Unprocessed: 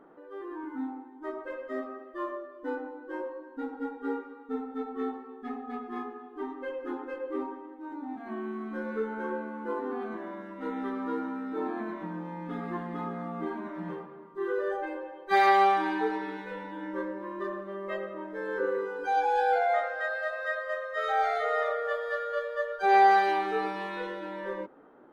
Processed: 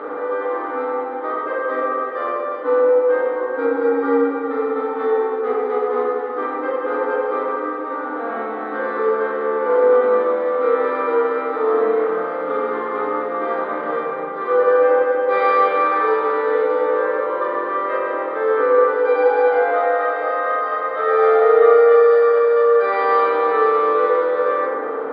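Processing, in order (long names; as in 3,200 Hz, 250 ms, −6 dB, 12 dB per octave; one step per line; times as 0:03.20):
compressor on every frequency bin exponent 0.4
loudspeaker in its box 330–3,000 Hz, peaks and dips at 330 Hz −5 dB, 480 Hz +8 dB, 750 Hz −7 dB, 1,200 Hz +7 dB, 1,800 Hz −4 dB, 2,600 Hz −7 dB
feedback delay network reverb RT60 1.8 s, low-frequency decay 1.35×, high-frequency decay 0.35×, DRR −3 dB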